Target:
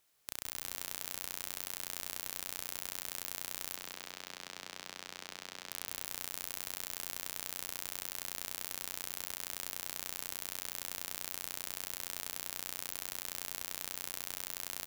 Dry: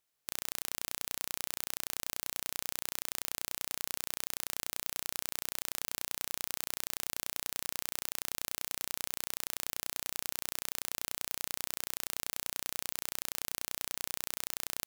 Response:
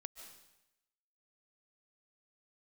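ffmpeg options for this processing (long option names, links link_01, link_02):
-filter_complex "[0:a]lowshelf=frequency=78:gain=-2,asoftclip=type=tanh:threshold=-19.5dB,asettb=1/sr,asplit=3[link_01][link_02][link_03];[link_01]atrim=end=3.754[link_04];[link_02]atrim=start=3.75:end=5.71,asetpts=PTS-STARTPTS,afade=type=in:duration=0.004:curve=qsin,afade=type=out:start_time=1.956:duration=0.004:curve=qsin,acrossover=split=190 6100:gain=0.2 1 0.112[link_05][link_06][link_07];[link_05][link_06][link_07]amix=inputs=3:normalize=0[link_08];[link_03]atrim=start=5.706[link_09];[link_04][link_08]acrossfade=duration=0.004:curve1=hsin:curve2=qsin[link_10];[link_10][link_09]acrossfade=duration=0.004:curve1=qsin:curve2=hsin,asplit=2[link_11][link_12];[link_12]asplit=6[link_13][link_14][link_15][link_16][link_17][link_18];[link_13]adelay=176,afreqshift=-87,volume=-7dB[link_19];[link_14]adelay=352,afreqshift=-174,volume=-13.6dB[link_20];[link_15]adelay=528,afreqshift=-261,volume=-20.1dB[link_21];[link_16]adelay=704,afreqshift=-348,volume=-26.7dB[link_22];[link_17]adelay=880,afreqshift=-435,volume=-33.2dB[link_23];[link_18]adelay=1056,afreqshift=-522,volume=-39.8dB[link_24];[link_19][link_20][link_21][link_22][link_23][link_24]amix=inputs=6:normalize=0[link_25];[link_11][link_25]amix=inputs=2:normalize=0,volume=8dB"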